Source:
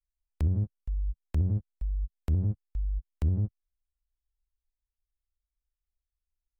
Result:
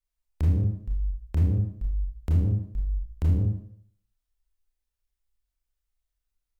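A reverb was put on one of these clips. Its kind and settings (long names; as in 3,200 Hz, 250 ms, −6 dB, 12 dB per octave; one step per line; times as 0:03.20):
four-comb reverb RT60 0.6 s, combs from 25 ms, DRR −2 dB
level +1 dB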